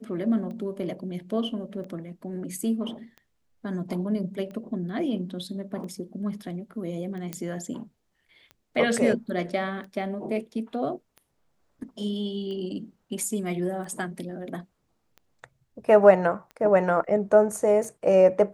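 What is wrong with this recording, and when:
scratch tick 45 rpm −30 dBFS
0:07.33: click −17 dBFS

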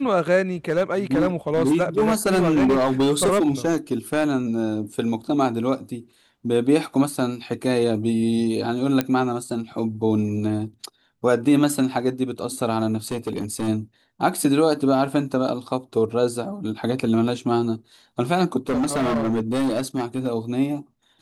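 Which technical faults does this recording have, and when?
0:00.68–0:04.36: clipping −14.5 dBFS
0:09.01: click −7 dBFS
0:13.12–0:13.69: clipping −21.5 dBFS
0:18.69–0:20.27: clipping −18.5 dBFS

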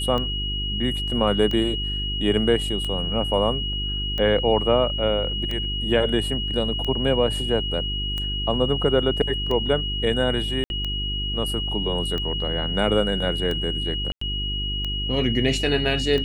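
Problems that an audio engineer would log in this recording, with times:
mains hum 50 Hz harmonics 8 −29 dBFS
scratch tick 45 rpm −16 dBFS
whistle 2,900 Hz −27 dBFS
0:10.64–0:10.70: drop-out 61 ms
0:14.12–0:14.21: drop-out 94 ms

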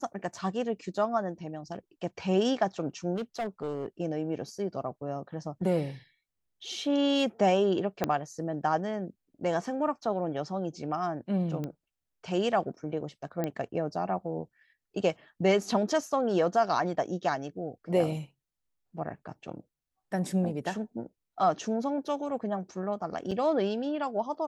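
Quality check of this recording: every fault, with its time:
0:03.15–0:03.86: clipping −28 dBFS
0:08.04: click −12 dBFS
0:11.64: click −23 dBFS
0:13.44: click −18 dBFS
0:23.31–0:23.32: drop-out 5 ms

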